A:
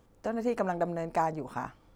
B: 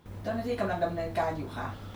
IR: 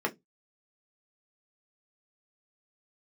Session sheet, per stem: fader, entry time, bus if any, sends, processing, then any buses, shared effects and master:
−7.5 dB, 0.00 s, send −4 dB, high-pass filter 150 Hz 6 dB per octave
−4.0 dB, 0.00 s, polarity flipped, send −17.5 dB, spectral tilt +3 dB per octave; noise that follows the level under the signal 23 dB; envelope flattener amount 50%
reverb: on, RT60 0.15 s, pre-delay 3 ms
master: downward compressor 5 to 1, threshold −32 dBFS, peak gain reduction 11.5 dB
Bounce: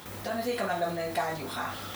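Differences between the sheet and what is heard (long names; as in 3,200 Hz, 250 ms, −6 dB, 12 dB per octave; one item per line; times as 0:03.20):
stem A: send off
master: missing downward compressor 5 to 1, threshold −32 dBFS, peak gain reduction 11.5 dB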